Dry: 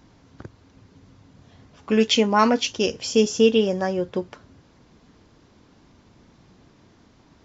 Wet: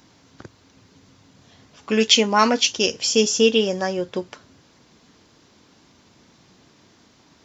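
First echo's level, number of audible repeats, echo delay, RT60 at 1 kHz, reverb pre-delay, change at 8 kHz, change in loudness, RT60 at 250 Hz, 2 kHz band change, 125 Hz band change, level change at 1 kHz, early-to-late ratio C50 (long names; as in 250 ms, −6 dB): no echo audible, no echo audible, no echo audible, no reverb audible, no reverb audible, can't be measured, +2.0 dB, no reverb audible, +4.0 dB, −2.0 dB, +1.0 dB, no reverb audible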